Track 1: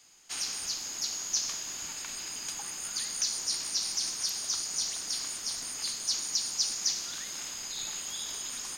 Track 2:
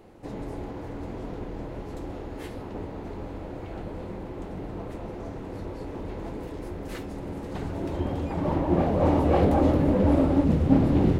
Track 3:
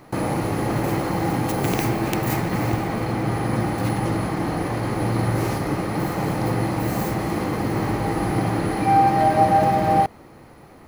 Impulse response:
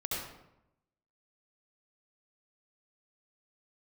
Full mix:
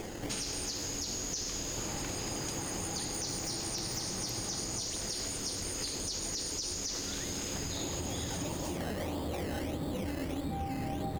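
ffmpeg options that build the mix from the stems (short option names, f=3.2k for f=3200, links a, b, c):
-filter_complex "[0:a]volume=-1dB[a];[1:a]acompressor=mode=upward:threshold=-34dB:ratio=2.5,acrusher=samples=15:mix=1:aa=0.000001:lfo=1:lforange=9:lforate=1.6,volume=-6dB[b];[2:a]adelay=1650,volume=-11dB,asplit=3[c][d][e];[c]atrim=end=4.8,asetpts=PTS-STARTPTS,afade=t=out:st=4.796:d=0.004:c=hsin[f];[d]atrim=start=4.8:end=7.77,asetpts=PTS-STARTPTS,volume=0[g];[e]atrim=start=7.77,asetpts=PTS-STARTPTS,afade=t=in:d=0.004:c=hsin[h];[f][g][h]concat=n=3:v=0:a=1[i];[a][b]amix=inputs=2:normalize=0,acontrast=86,alimiter=limit=-17dB:level=0:latency=1:release=57,volume=0dB[j];[i][j]amix=inputs=2:normalize=0,acompressor=threshold=-34dB:ratio=6"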